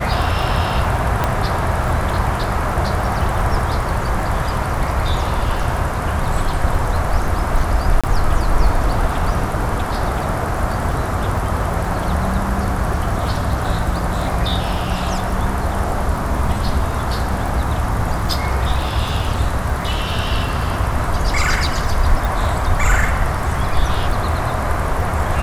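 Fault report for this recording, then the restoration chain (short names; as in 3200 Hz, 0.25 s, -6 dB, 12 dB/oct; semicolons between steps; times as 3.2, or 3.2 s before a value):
crackle 33/s -25 dBFS
1.24 pop -4 dBFS
8.01–8.04 gap 26 ms
22.25 pop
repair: de-click; interpolate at 8.01, 26 ms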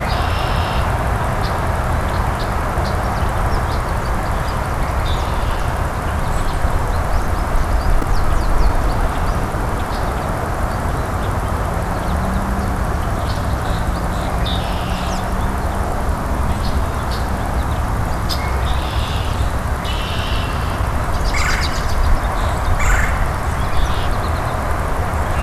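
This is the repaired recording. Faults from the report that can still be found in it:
none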